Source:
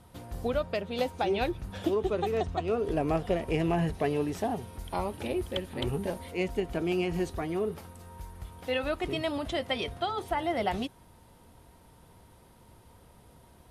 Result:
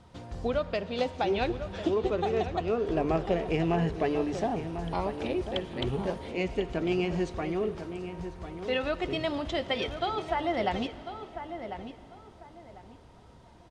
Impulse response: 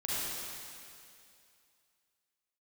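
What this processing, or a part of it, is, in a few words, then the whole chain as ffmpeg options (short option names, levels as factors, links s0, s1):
saturated reverb return: -filter_complex "[0:a]lowpass=f=7100:w=0.5412,lowpass=f=7100:w=1.3066,asplit=2[s0][s1];[s1]adelay=1047,lowpass=f=2200:p=1,volume=0.335,asplit=2[s2][s3];[s3]adelay=1047,lowpass=f=2200:p=1,volume=0.26,asplit=2[s4][s5];[s5]adelay=1047,lowpass=f=2200:p=1,volume=0.26[s6];[s0][s2][s4][s6]amix=inputs=4:normalize=0,bandreject=f=49.12:t=h:w=4,bandreject=f=98.24:t=h:w=4,bandreject=f=147.36:t=h:w=4,asplit=2[s7][s8];[1:a]atrim=start_sample=2205[s9];[s8][s9]afir=irnorm=-1:irlink=0,asoftclip=type=tanh:threshold=0.0531,volume=0.141[s10];[s7][s10]amix=inputs=2:normalize=0"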